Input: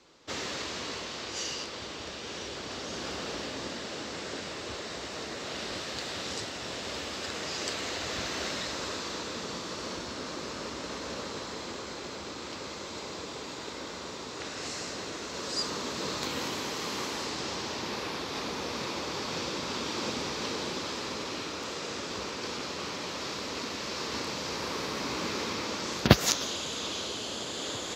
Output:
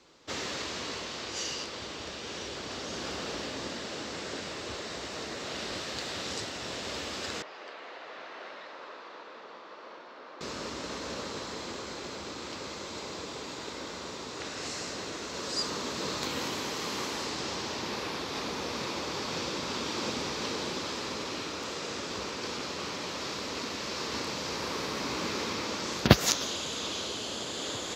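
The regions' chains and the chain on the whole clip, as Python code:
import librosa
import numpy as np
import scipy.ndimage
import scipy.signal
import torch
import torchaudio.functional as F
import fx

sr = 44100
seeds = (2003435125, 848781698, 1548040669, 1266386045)

y = fx.chain(x, sr, fx.highpass(hz=660.0, slope=12),
    fx.spacing_loss(db_at_10k=43), at=(7.42, 10.41))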